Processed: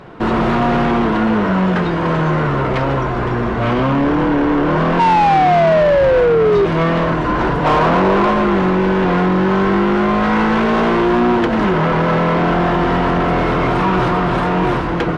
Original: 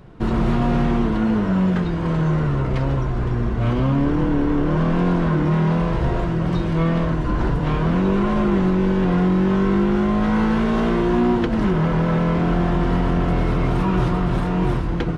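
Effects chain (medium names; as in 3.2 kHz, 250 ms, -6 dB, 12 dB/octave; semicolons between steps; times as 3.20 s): 4.99–6.66 s: painted sound fall 390–940 Hz -17 dBFS; 7.64–8.30 s: peaking EQ 760 Hz +12 dB -> +5.5 dB 1.9 oct; overdrive pedal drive 22 dB, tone 2 kHz, clips at -5.5 dBFS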